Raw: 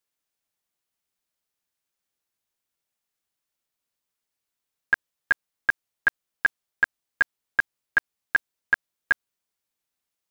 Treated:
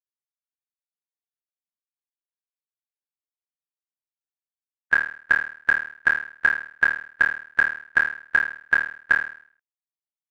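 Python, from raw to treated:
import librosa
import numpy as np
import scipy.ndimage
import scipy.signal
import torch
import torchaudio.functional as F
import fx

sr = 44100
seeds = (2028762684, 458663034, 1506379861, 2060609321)

y = fx.bin_expand(x, sr, power=3.0)
y = fx.room_flutter(y, sr, wall_m=4.5, rt60_s=0.49)
y = F.gain(torch.from_numpy(y), 4.5).numpy()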